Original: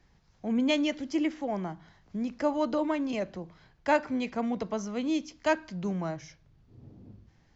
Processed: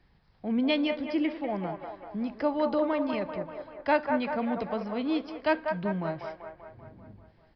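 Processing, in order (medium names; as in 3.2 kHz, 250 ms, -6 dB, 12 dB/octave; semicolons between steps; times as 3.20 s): resampled via 11.025 kHz; on a send: feedback echo behind a band-pass 194 ms, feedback 59%, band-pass 930 Hz, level -4 dB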